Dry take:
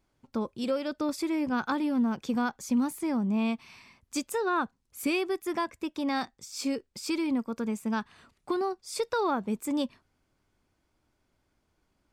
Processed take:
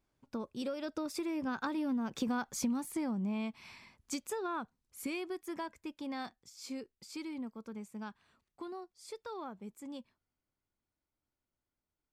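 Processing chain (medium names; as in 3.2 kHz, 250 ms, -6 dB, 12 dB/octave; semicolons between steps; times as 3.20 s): Doppler pass-by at 2.47 s, 11 m/s, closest 3.7 m; compression 4:1, threshold -45 dBFS, peak gain reduction 17 dB; trim +10.5 dB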